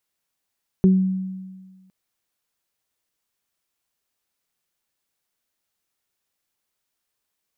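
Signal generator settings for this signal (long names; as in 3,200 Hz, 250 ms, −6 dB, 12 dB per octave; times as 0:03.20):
harmonic partials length 1.06 s, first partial 188 Hz, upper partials −7 dB, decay 1.51 s, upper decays 0.29 s, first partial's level −10 dB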